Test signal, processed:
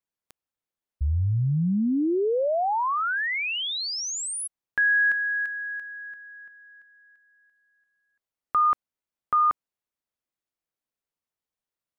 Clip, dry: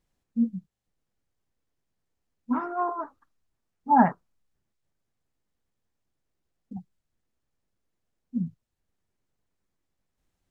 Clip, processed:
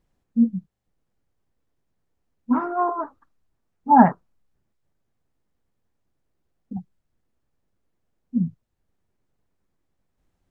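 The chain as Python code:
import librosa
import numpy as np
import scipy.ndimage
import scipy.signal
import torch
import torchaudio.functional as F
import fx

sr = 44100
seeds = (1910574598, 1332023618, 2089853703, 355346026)

y = fx.high_shelf(x, sr, hz=2000.0, db=-8.5)
y = y * librosa.db_to_amplitude(6.5)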